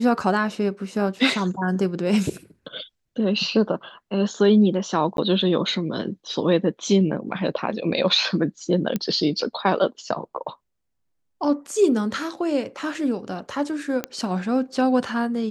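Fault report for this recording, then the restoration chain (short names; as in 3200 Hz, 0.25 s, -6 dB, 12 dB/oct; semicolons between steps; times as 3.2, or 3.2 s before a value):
5.17–5.18 gap 12 ms
8.96 pop -11 dBFS
14.04 pop -10 dBFS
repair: de-click; interpolate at 5.17, 12 ms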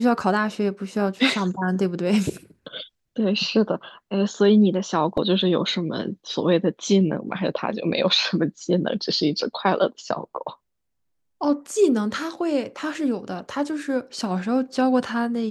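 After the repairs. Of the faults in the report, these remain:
none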